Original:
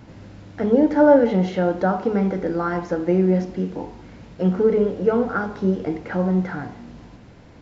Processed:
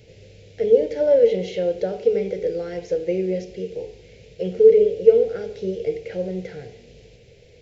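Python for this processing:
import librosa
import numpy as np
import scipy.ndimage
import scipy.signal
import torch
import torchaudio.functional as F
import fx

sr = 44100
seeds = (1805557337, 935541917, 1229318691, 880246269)

y = fx.curve_eq(x, sr, hz=(130.0, 290.0, 450.0, 1100.0, 2300.0), db=(0, -14, 13, -25, 7))
y = y * 10.0 ** (-5.0 / 20.0)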